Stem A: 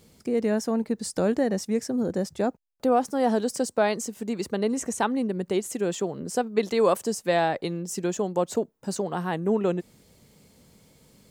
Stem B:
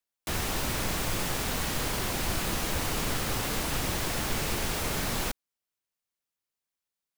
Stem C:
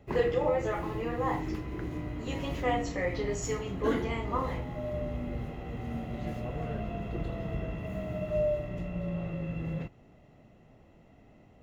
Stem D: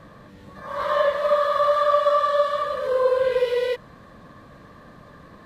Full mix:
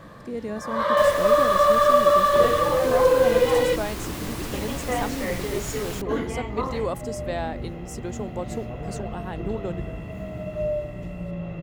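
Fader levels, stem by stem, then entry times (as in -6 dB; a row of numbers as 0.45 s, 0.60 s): -7.0 dB, -5.0 dB, +2.0 dB, +2.0 dB; 0.00 s, 0.70 s, 2.25 s, 0.00 s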